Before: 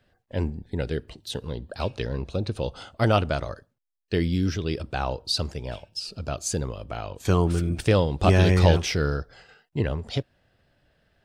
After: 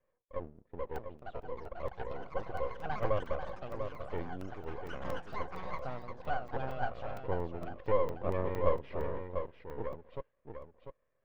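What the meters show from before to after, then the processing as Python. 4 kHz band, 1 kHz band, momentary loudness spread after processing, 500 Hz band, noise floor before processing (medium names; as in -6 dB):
-24.5 dB, -6.5 dB, 14 LU, -8.5 dB, -73 dBFS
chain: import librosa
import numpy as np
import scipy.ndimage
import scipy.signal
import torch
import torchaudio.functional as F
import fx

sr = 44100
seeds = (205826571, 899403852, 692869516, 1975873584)

y = fx.notch(x, sr, hz=2600.0, q=15.0)
y = fx.spec_gate(y, sr, threshold_db=-25, keep='strong')
y = fx.vowel_filter(y, sr, vowel='e')
y = fx.low_shelf(y, sr, hz=360.0, db=9.5)
y = np.maximum(y, 0.0)
y = fx.air_absorb(y, sr, metres=440.0)
y = y + 10.0 ** (-7.0 / 20.0) * np.pad(y, (int(696 * sr / 1000.0), 0))[:len(y)]
y = fx.echo_pitch(y, sr, ms=701, semitones=6, count=3, db_per_echo=-6.0)
y = fx.buffer_crackle(y, sr, first_s=0.73, period_s=0.23, block=128, kind='zero')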